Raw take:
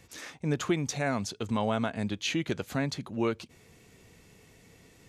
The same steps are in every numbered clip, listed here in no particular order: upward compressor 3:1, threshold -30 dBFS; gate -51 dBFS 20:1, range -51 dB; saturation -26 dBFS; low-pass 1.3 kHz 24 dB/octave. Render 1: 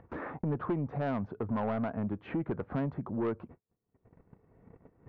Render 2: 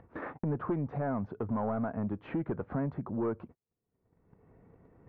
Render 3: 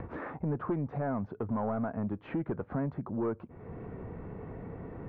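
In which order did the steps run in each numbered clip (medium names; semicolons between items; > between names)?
gate > low-pass > saturation > upward compressor; saturation > low-pass > gate > upward compressor; saturation > low-pass > upward compressor > gate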